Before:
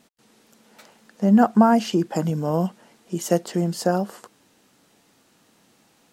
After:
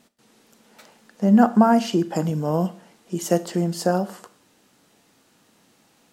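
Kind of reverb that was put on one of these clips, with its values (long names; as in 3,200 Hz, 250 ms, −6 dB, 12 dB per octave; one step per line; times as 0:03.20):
four-comb reverb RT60 0.47 s, combs from 26 ms, DRR 14 dB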